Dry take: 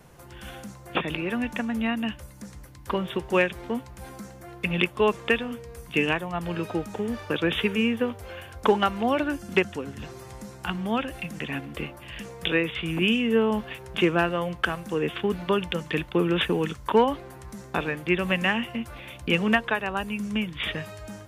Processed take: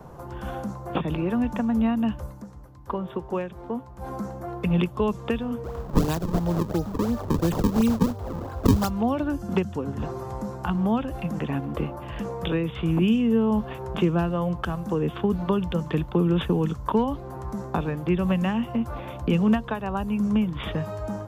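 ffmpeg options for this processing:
ffmpeg -i in.wav -filter_complex "[0:a]asplit=3[link_01][link_02][link_03];[link_01]afade=type=out:start_time=5.63:duration=0.02[link_04];[link_02]acrusher=samples=36:mix=1:aa=0.000001:lfo=1:lforange=57.6:lforate=2.9,afade=type=in:start_time=5.63:duration=0.02,afade=type=out:start_time=8.89:duration=0.02[link_05];[link_03]afade=type=in:start_time=8.89:duration=0.02[link_06];[link_04][link_05][link_06]amix=inputs=3:normalize=0,asplit=3[link_07][link_08][link_09];[link_07]atrim=end=2.45,asetpts=PTS-STARTPTS,afade=type=out:start_time=2.28:duration=0.17:silence=0.354813[link_10];[link_08]atrim=start=2.45:end=3.95,asetpts=PTS-STARTPTS,volume=-9dB[link_11];[link_09]atrim=start=3.95,asetpts=PTS-STARTPTS,afade=type=in:duration=0.17:silence=0.354813[link_12];[link_10][link_11][link_12]concat=n=3:v=0:a=1,equalizer=frequency=9200:width_type=o:width=0.2:gain=-9,acrossover=split=210|3000[link_13][link_14][link_15];[link_14]acompressor=threshold=-36dB:ratio=5[link_16];[link_13][link_16][link_15]amix=inputs=3:normalize=0,highshelf=frequency=1500:width_type=q:width=1.5:gain=-11.5,volume=8.5dB" out.wav

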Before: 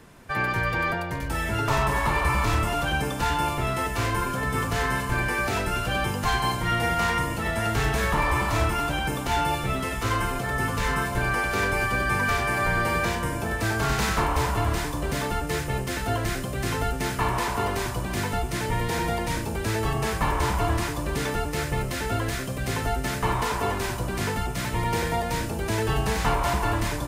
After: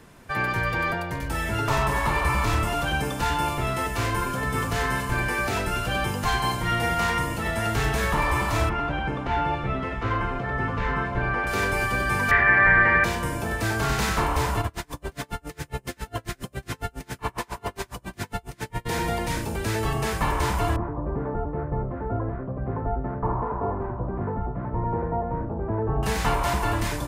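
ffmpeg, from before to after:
ffmpeg -i in.wav -filter_complex "[0:a]asettb=1/sr,asplit=3[link_01][link_02][link_03];[link_01]atrim=end=8.694[link_04];[link_02]atrim=start=8.69:end=11.47,asetpts=PTS-STARTPTS,afade=type=in:duration=0.004:curve=qsin,afade=type=out:start_time=2.776:duration=0.004:curve=qsin,lowpass=2200[link_05];[link_03]atrim=start=11.466[link_06];[link_04][link_05]acrossfade=duration=0.004:curve1=hsin:curve2=qsin[link_07];[link_07][link_06]acrossfade=duration=0.004:curve1=qsin:curve2=hsin,asettb=1/sr,asplit=3[link_08][link_09][link_10];[link_08]atrim=end=12.314[link_11];[link_09]atrim=start=12.31:end=13.04,asetpts=PTS-STARTPTS,afade=type=in:duration=0.004:curve=qsin,afade=type=out:start_time=0.726:duration=0.004:curve=qsin,lowpass=frequency=1900:width_type=q:width=9.1[link_12];[link_10]atrim=start=13.036[link_13];[link_11][link_12]acrossfade=duration=0.004:curve1=hsin:curve2=qsin[link_14];[link_14][link_13]acrossfade=duration=0.004:curve1=qsin:curve2=hsin,asplit=3[link_15][link_16][link_17];[link_15]afade=type=out:start_time=14.61:duration=0.02[link_18];[link_16]aeval=exprs='val(0)*pow(10,-35*(0.5-0.5*cos(2*PI*7.3*n/s))/20)':channel_layout=same,afade=type=in:start_time=14.61:duration=0.02,afade=type=out:start_time=18.85:duration=0.02[link_19];[link_17]afade=type=in:start_time=18.85:duration=0.02[link_20];[link_18][link_19][link_20]amix=inputs=3:normalize=0,asettb=1/sr,asplit=3[link_21][link_22][link_23];[link_21]atrim=end=20.764[link_24];[link_22]atrim=start=20.76:end=26.03,asetpts=PTS-STARTPTS,afade=type=in:duration=0.004:curve=qsin,afade=type=out:start_time=5.266:duration=0.004:curve=qsin,lowpass=frequency=1100:width=0.5412,lowpass=frequency=1100:width=1.3066[link_25];[link_23]atrim=start=26.026[link_26];[link_24][link_25]acrossfade=duration=0.004:curve1=hsin:curve2=qsin[link_27];[link_27][link_26]acrossfade=duration=0.004:curve1=qsin:curve2=hsin" out.wav

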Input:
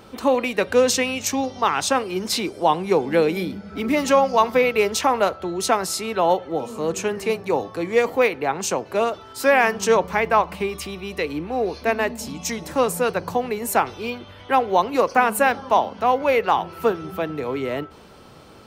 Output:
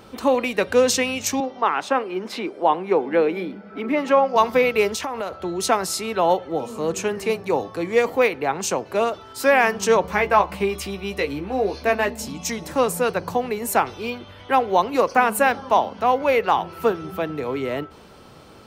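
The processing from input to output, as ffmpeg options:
ffmpeg -i in.wav -filter_complex "[0:a]asettb=1/sr,asplit=3[link_01][link_02][link_03];[link_01]atrim=end=1.404[link_04];[link_02]atrim=start=1.4:end=4.36,asetpts=PTS-STARTPTS,afade=type=in:duration=0.004:curve=qsin,afade=type=out:start_time=2.956:duration=0.004:curve=qsin,acrossover=split=200 2900:gain=0.0794 1 0.141[link_05][link_06][link_07];[link_05][link_06][link_07]amix=inputs=3:normalize=0[link_08];[link_03]atrim=start=4.356[link_09];[link_04][link_08]acrossfade=duration=0.004:curve1=hsin:curve2=qsin[link_10];[link_10][link_09]acrossfade=duration=0.004:curve1=qsin:curve2=hsin,asettb=1/sr,asplit=3[link_11][link_12][link_13];[link_11]atrim=end=4.924[link_14];[link_12]atrim=start=4.92:end=5.44,asetpts=PTS-STARTPTS,afade=type=in:duration=0.004:curve=qsin,afade=type=out:start_time=0.516:duration=0.004:curve=qsin,acompressor=threshold=-24dB:ratio=5:attack=3.2:release=140:knee=1:detection=peak[link_15];[link_13]atrim=start=5.436[link_16];[link_14][link_15]acrossfade=duration=0.004:curve1=hsin:curve2=qsin[link_17];[link_17][link_16]acrossfade=duration=0.004:curve1=qsin:curve2=hsin,asettb=1/sr,asplit=3[link_18][link_19][link_20];[link_18]atrim=end=10.024[link_21];[link_19]atrim=start=10.02:end=12.25,asetpts=PTS-STARTPTS,afade=type=in:duration=0.004:curve=qsin,afade=type=out:start_time=2.226:duration=0.004:curve=qsin,asplit=2[link_22][link_23];[link_23]adelay=15,volume=-6dB[link_24];[link_22][link_24]amix=inputs=2:normalize=0,atrim=end_sample=98343[link_25];[link_20]atrim=start=12.246[link_26];[link_21][link_25]acrossfade=duration=0.004:curve1=hsin:curve2=qsin[link_27];[link_27][link_26]acrossfade=duration=0.004:curve1=qsin:curve2=hsin" out.wav

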